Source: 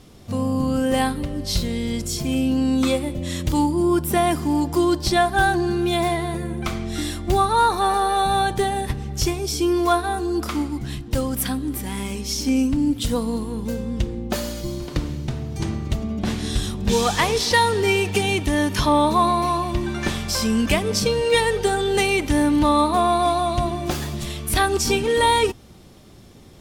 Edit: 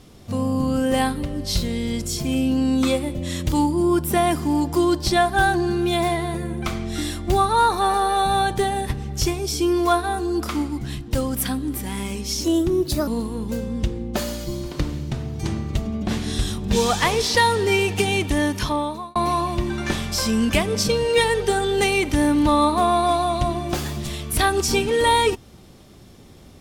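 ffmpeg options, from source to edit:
-filter_complex "[0:a]asplit=4[s0][s1][s2][s3];[s0]atrim=end=12.444[s4];[s1]atrim=start=12.44:end=13.24,asetpts=PTS-STARTPTS,asetrate=55566,aresample=44100[s5];[s2]atrim=start=13.236:end=19.32,asetpts=PTS-STARTPTS,afade=t=out:st=5.314:d=0.77[s6];[s3]atrim=start=19.32,asetpts=PTS-STARTPTS,afade=t=in:d=0.004:c=hsin[s7];[s4][s5]acrossfade=d=0.004:c1=hsin:c2=hsin[s8];[s6][s7]concat=n=2:v=0:a=1[s9];[s8][s9]acrossfade=d=0.004:c1=hsin:c2=hsin"

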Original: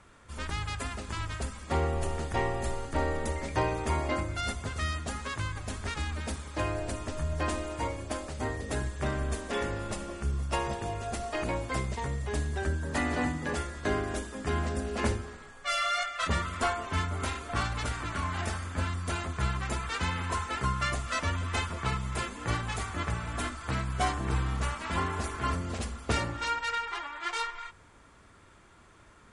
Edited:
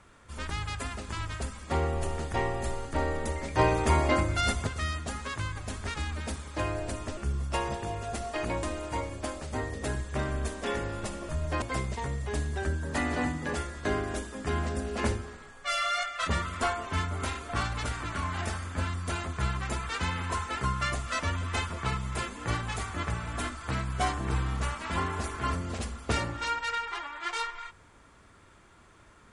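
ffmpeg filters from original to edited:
-filter_complex "[0:a]asplit=7[s0][s1][s2][s3][s4][s5][s6];[s0]atrim=end=3.592[s7];[s1]atrim=start=3.588:end=4.672,asetpts=PTS-STARTPTS,volume=1.88[s8];[s2]atrim=start=4.668:end=7.172[s9];[s3]atrim=start=10.158:end=11.622[s10];[s4]atrim=start=7.498:end=10.162[s11];[s5]atrim=start=7.168:end=7.502[s12];[s6]atrim=start=11.618[s13];[s7][s8]acrossfade=d=0.004:c1=hsin:c2=hsin[s14];[s14][s9]acrossfade=d=0.004:c1=hsin:c2=hsin[s15];[s15][s10]acrossfade=d=0.004:c1=hsin:c2=hsin[s16];[s16][s11]acrossfade=d=0.004:c1=hsin:c2=hsin[s17];[s17][s12]acrossfade=d=0.004:c1=hsin:c2=hsin[s18];[s18][s13]acrossfade=d=0.004:c1=hsin:c2=hsin"

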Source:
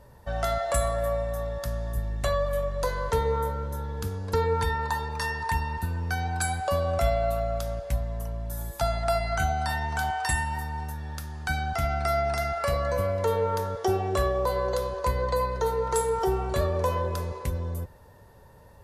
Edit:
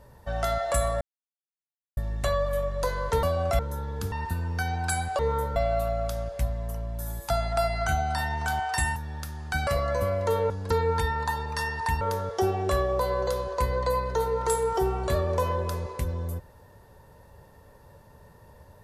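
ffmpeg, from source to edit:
-filter_complex "[0:a]asplit=12[s0][s1][s2][s3][s4][s5][s6][s7][s8][s9][s10][s11];[s0]atrim=end=1.01,asetpts=PTS-STARTPTS,afade=t=out:st=1.006:d=0.004:c=hsin[s12];[s1]atrim=start=1.01:end=1.97,asetpts=PTS-STARTPTS,volume=0[s13];[s2]atrim=start=1.97:end=3.232,asetpts=PTS-STARTPTS,afade=t=in:d=0.004:c=hsin[s14];[s3]atrim=start=6.708:end=7.072[s15];[s4]atrim=start=3.598:end=4.132[s16];[s5]atrim=start=5.638:end=6.712[s17];[s6]atrim=start=3.228:end=3.602[s18];[s7]atrim=start=7.068:end=10.472[s19];[s8]atrim=start=10.908:end=11.622[s20];[s9]atrim=start=12.638:end=13.472[s21];[s10]atrim=start=4.128:end=5.642[s22];[s11]atrim=start=13.468[s23];[s12][s13][s14]concat=n=3:v=0:a=1[s24];[s24][s15]acrossfade=d=0.004:c1=hsin:c2=hsin[s25];[s25][s16]acrossfade=d=0.004:c1=hsin:c2=hsin[s26];[s26][s17]acrossfade=d=0.004:c1=hsin:c2=hsin[s27];[s27][s18]acrossfade=d=0.004:c1=hsin:c2=hsin[s28];[s28][s19]acrossfade=d=0.004:c1=hsin:c2=hsin[s29];[s29][s20]acrossfade=d=0.004:c1=hsin:c2=hsin[s30];[s30][s21]acrossfade=d=0.004:c1=hsin:c2=hsin[s31];[s31][s22]acrossfade=d=0.004:c1=hsin:c2=hsin[s32];[s32][s23]acrossfade=d=0.004:c1=hsin:c2=hsin"

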